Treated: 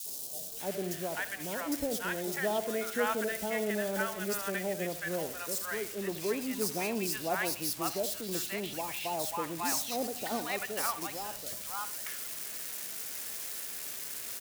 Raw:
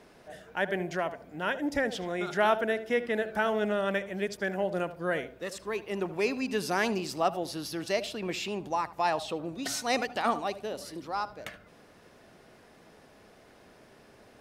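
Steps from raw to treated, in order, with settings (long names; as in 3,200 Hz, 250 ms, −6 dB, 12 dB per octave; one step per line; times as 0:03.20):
spike at every zero crossing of −25 dBFS
three-band delay without the direct sound highs, lows, mids 60/600 ms, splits 840/3,700 Hz
level −3 dB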